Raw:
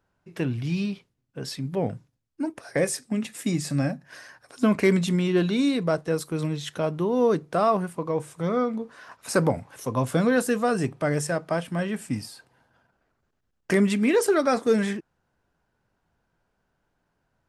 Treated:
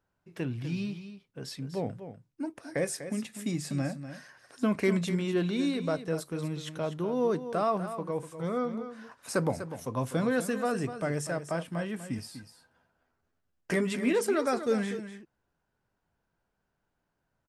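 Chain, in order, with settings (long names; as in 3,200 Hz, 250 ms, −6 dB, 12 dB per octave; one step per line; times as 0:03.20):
0:12.17–0:14.13: double-tracking delay 12 ms −4.5 dB
single-tap delay 246 ms −11 dB
level −6.5 dB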